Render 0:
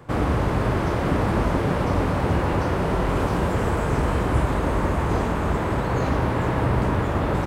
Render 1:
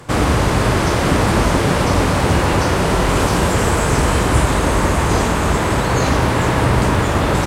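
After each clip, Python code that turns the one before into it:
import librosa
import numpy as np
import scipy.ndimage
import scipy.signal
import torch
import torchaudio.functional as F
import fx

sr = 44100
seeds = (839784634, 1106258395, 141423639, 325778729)

y = fx.peak_eq(x, sr, hz=7700.0, db=13.5, octaves=2.6)
y = F.gain(torch.from_numpy(y), 6.0).numpy()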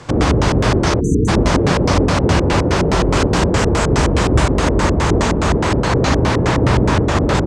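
y = fx.filter_lfo_lowpass(x, sr, shape='square', hz=4.8, low_hz=410.0, high_hz=6000.0, q=1.4)
y = fx.spec_erase(y, sr, start_s=1.0, length_s=0.28, low_hz=480.0, high_hz=5900.0)
y = F.gain(torch.from_numpy(y), 1.0).numpy()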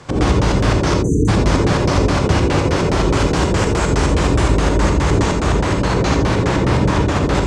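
y = fx.rev_gated(x, sr, seeds[0], gate_ms=100, shape='rising', drr_db=3.5)
y = F.gain(torch.from_numpy(y), -3.0).numpy()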